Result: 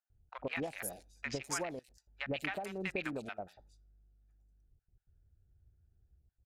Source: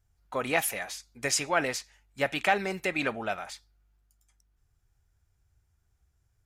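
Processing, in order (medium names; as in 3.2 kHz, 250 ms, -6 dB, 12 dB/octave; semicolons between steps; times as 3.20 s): local Wiener filter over 41 samples; compression, threshold -36 dBFS, peak gain reduction 16 dB; trance gate "xx.x.xxxxxxxxxxx" 160 bpm -24 dB; three bands offset in time mids, lows, highs 100/200 ms, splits 870/4800 Hz; trim +2.5 dB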